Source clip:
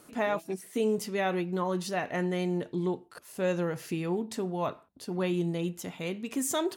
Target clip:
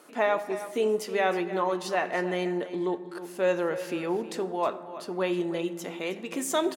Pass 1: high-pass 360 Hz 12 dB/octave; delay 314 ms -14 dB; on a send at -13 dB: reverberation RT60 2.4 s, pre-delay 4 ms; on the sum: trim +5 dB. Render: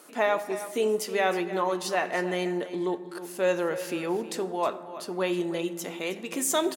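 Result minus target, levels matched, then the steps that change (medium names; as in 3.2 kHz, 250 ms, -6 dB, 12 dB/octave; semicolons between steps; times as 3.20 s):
8 kHz band +5.5 dB
add after high-pass: treble shelf 5 kHz -8 dB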